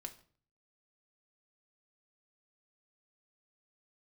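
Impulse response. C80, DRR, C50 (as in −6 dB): 18.5 dB, 5.0 dB, 14.5 dB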